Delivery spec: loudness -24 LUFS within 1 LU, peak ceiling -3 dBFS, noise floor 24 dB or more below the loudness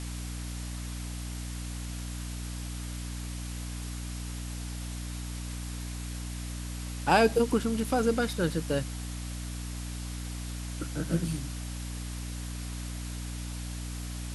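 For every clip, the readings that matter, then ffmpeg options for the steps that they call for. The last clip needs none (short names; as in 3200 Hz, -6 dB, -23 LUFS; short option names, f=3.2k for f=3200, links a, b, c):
hum 60 Hz; harmonics up to 300 Hz; hum level -34 dBFS; noise floor -37 dBFS; noise floor target -58 dBFS; loudness -33.5 LUFS; peak -8.5 dBFS; loudness target -24.0 LUFS
-> -af "bandreject=f=60:t=h:w=6,bandreject=f=120:t=h:w=6,bandreject=f=180:t=h:w=6,bandreject=f=240:t=h:w=6,bandreject=f=300:t=h:w=6"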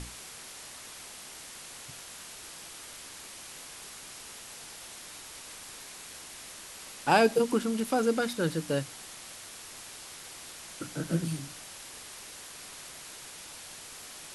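hum none; noise floor -46 dBFS; noise floor target -59 dBFS
-> -af "afftdn=nr=13:nf=-46"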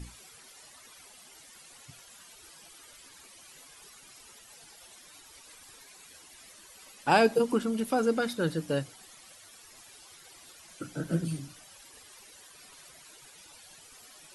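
noise floor -54 dBFS; loudness -29.0 LUFS; peak -9.0 dBFS; loudness target -24.0 LUFS
-> -af "volume=5dB"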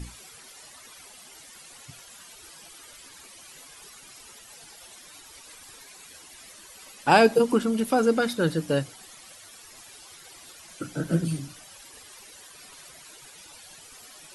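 loudness -24.0 LUFS; peak -4.0 dBFS; noise floor -49 dBFS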